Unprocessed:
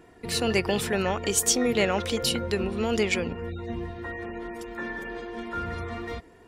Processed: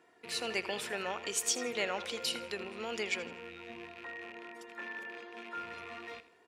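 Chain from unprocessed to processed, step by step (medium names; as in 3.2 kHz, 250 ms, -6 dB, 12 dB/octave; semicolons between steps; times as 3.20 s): rattle on loud lows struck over -41 dBFS, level -30 dBFS; frequency weighting A; feedback delay 81 ms, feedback 38%, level -15.5 dB; trim -8.5 dB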